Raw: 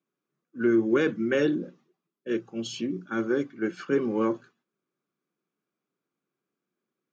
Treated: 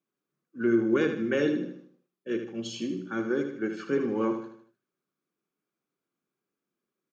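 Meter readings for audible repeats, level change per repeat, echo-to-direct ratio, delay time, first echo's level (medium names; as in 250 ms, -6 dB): 4, -7.5 dB, -7.0 dB, 77 ms, -8.0 dB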